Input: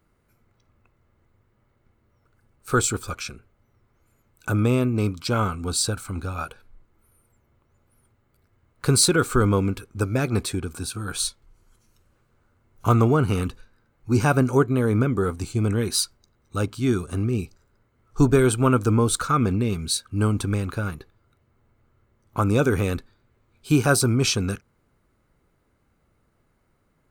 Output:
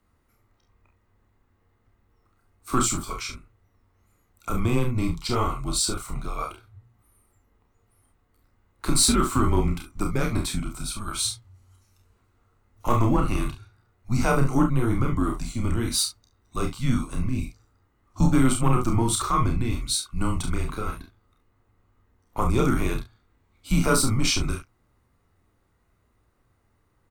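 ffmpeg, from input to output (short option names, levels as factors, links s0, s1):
-af "aecho=1:1:31|45|69:0.596|0.398|0.282,afreqshift=-120,acontrast=40,volume=0.422"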